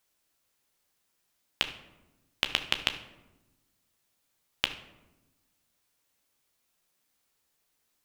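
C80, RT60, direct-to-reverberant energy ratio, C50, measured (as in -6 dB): 13.5 dB, 1.1 s, 6.0 dB, 10.5 dB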